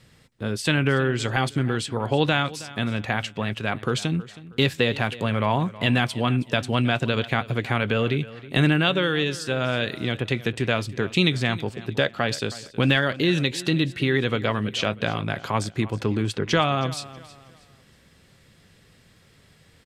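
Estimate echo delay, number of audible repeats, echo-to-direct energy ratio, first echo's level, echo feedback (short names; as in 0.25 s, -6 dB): 0.319 s, 2, -17.5 dB, -18.0 dB, 34%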